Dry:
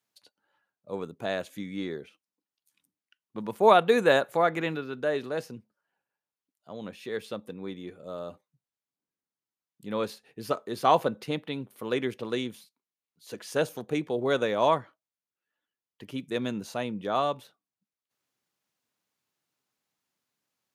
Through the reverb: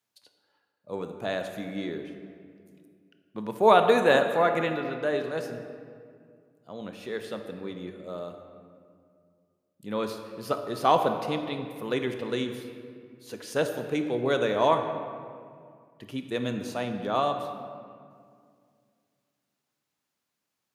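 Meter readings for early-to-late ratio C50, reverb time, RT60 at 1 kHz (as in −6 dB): 7.0 dB, 2.2 s, 2.1 s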